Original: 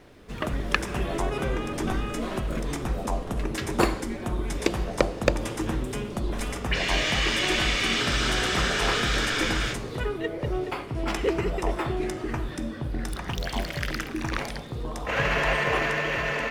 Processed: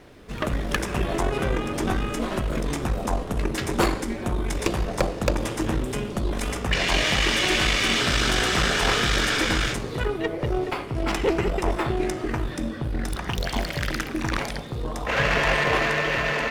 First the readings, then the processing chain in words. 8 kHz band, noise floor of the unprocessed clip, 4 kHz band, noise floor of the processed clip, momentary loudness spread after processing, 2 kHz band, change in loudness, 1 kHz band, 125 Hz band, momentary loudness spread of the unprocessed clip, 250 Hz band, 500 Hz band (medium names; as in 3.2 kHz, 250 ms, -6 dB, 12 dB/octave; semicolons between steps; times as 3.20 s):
+3.5 dB, -37 dBFS, +3.0 dB, -34 dBFS, 8 LU, +2.5 dB, +2.5 dB, +3.0 dB, +3.0 dB, 9 LU, +2.5 dB, +2.5 dB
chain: valve stage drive 20 dB, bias 0.65; trim +6.5 dB